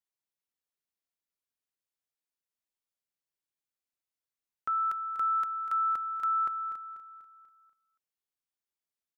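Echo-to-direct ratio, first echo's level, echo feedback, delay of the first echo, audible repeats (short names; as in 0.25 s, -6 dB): -11.0 dB, -12.0 dB, 48%, 0.244 s, 4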